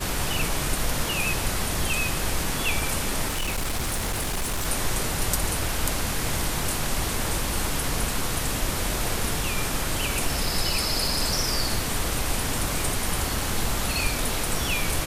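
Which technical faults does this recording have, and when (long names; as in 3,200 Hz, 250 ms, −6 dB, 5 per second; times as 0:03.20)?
0:03.27–0:04.67: clipping −23 dBFS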